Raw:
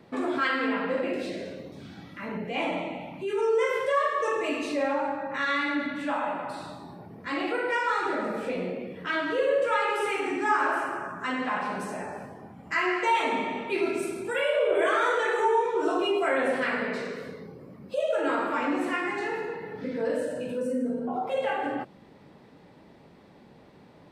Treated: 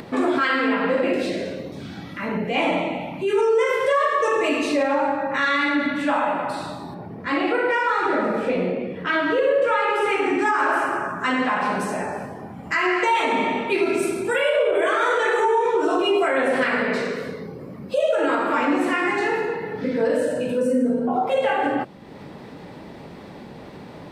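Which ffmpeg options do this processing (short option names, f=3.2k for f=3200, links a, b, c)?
-filter_complex "[0:a]asettb=1/sr,asplit=3[a][b][c];[a]atrim=end=6.944[d];[b]atrim=start=6.94:end=10.39,asetpts=PTS-STARTPTS,afade=t=in:d=0.004:c=qsin,afade=t=out:st=3.446:d=0.004:c=qsin,highshelf=f=5.1k:g=-10[e];[c]atrim=start=10.386[f];[d][e]acrossfade=d=0.004:c1=hsin:c2=qsin[g];[g][f]acrossfade=d=0.004:c1=qsin:c2=hsin,acompressor=mode=upward:threshold=-40dB:ratio=2.5,alimiter=limit=-20dB:level=0:latency=1:release=94,volume=8.5dB"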